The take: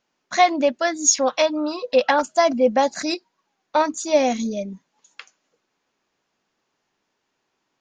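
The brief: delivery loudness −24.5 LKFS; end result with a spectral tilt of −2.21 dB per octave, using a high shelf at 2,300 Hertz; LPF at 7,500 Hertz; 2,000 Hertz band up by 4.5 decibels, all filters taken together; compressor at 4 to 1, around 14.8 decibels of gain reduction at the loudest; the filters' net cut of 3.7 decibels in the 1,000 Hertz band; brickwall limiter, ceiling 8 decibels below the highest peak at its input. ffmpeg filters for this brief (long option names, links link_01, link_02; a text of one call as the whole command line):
ffmpeg -i in.wav -af "lowpass=7500,equalizer=frequency=1000:width_type=o:gain=-7.5,equalizer=frequency=2000:width_type=o:gain=3.5,highshelf=frequency=2300:gain=7.5,acompressor=threshold=-25dB:ratio=4,volume=6dB,alimiter=limit=-14.5dB:level=0:latency=1" out.wav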